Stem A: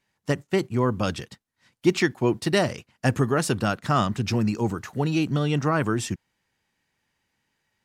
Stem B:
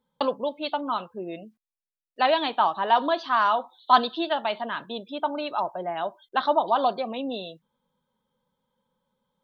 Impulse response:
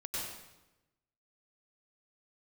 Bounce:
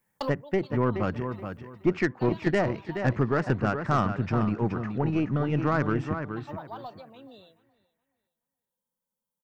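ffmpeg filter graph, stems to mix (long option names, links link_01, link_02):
-filter_complex "[0:a]lowpass=frequency=2200:width=0.5412,lowpass=frequency=2200:width=1.3066,asoftclip=type=tanh:threshold=-9.5dB,volume=-2.5dB,asplit=3[link_01][link_02][link_03];[link_02]volume=-7.5dB[link_04];[1:a]volume=-7dB,afade=type=out:start_time=2.45:duration=0.31:silence=0.281838,asplit=2[link_05][link_06];[link_06]volume=-22.5dB[link_07];[link_03]apad=whole_len=415884[link_08];[link_05][link_08]sidechaincompress=threshold=-39dB:ratio=8:attack=35:release=534[link_09];[link_04][link_07]amix=inputs=2:normalize=0,aecho=0:1:424|848|1272|1696:1|0.24|0.0576|0.0138[link_10];[link_01][link_09][link_10]amix=inputs=3:normalize=0,aeval=exprs='0.237*(cos(1*acos(clip(val(0)/0.237,-1,1)))-cos(1*PI/2))+0.0188*(cos(4*acos(clip(val(0)/0.237,-1,1)))-cos(4*PI/2))':channel_layout=same,aexciter=amount=9:drive=3.9:freq=5200"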